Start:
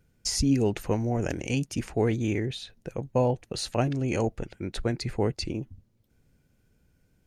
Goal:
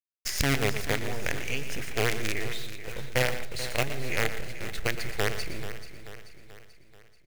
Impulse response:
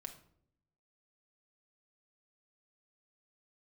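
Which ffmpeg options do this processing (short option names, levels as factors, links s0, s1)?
-filter_complex "[0:a]aeval=exprs='val(0)+0.5*0.0224*sgn(val(0))':c=same,agate=range=0.398:threshold=0.02:ratio=16:detection=peak,acrusher=bits=4:dc=4:mix=0:aa=0.000001,equalizer=f=250:t=o:w=1:g=-8,equalizer=f=1000:t=o:w=1:g=-7,equalizer=f=2000:t=o:w=1:g=9,aecho=1:1:435|870|1305|1740|2175:0.237|0.123|0.0641|0.0333|0.0173,asplit=2[s0][s1];[1:a]atrim=start_sample=2205,adelay=117[s2];[s1][s2]afir=irnorm=-1:irlink=0,volume=0.473[s3];[s0][s3]amix=inputs=2:normalize=0,volume=0.794"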